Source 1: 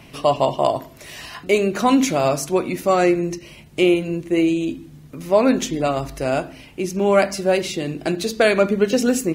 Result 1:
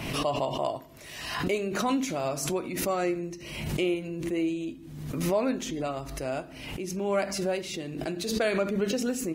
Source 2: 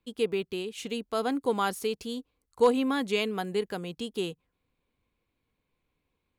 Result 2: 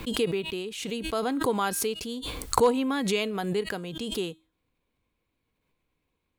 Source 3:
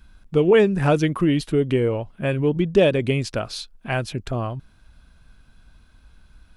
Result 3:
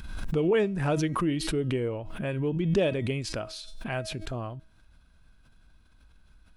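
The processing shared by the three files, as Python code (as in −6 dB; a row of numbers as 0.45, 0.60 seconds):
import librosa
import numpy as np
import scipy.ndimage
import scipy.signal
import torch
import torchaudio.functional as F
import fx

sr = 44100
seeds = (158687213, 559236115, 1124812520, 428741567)

y = fx.comb_fb(x, sr, f0_hz=320.0, decay_s=0.38, harmonics='all', damping=0.0, mix_pct=50)
y = fx.pre_swell(y, sr, db_per_s=45.0)
y = y * 10.0 ** (-30 / 20.0) / np.sqrt(np.mean(np.square(y)))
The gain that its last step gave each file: −6.0, +5.5, −3.5 decibels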